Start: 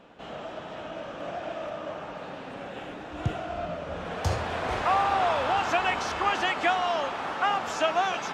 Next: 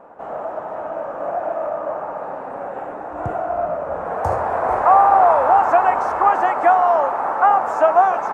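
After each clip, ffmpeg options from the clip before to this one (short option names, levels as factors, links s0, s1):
-af "firequalizer=gain_entry='entry(160,0);entry(550,12);entry(860,15);entry(3200,-17);entry(8600,-1)':delay=0.05:min_phase=1,volume=0.891"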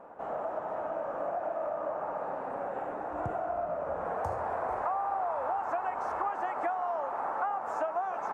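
-af "acompressor=threshold=0.0631:ratio=6,volume=0.501"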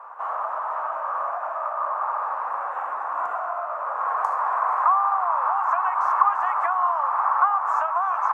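-af "highpass=f=1100:t=q:w=5.7,volume=1.68"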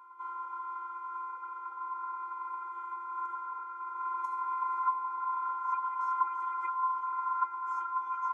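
-af "afftfilt=real='hypot(re,im)*cos(PI*b)':imag='0':win_size=512:overlap=0.75,afftfilt=real='re*eq(mod(floor(b*sr/1024/260),2),1)':imag='im*eq(mod(floor(b*sr/1024/260),2),1)':win_size=1024:overlap=0.75,volume=0.501"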